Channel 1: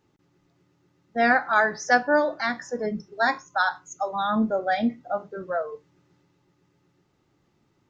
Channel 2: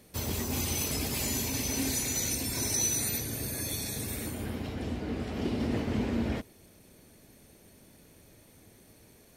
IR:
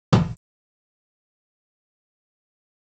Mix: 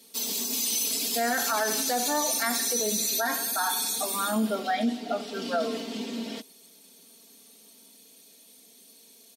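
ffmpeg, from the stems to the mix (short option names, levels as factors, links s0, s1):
-filter_complex "[0:a]volume=0.75,asplit=2[s0][s1];[s1]volume=0.15[s2];[1:a]highshelf=f=2600:t=q:w=1.5:g=10.5,acontrast=84,volume=0.224[s3];[s2]aecho=0:1:88|176|264|352|440|528|616|704|792:1|0.57|0.325|0.185|0.106|0.0602|0.0343|0.0195|0.0111[s4];[s0][s3][s4]amix=inputs=3:normalize=0,highpass=f=220:w=0.5412,highpass=f=220:w=1.3066,aecho=1:1:4.4:0.91,alimiter=limit=0.126:level=0:latency=1:release=27"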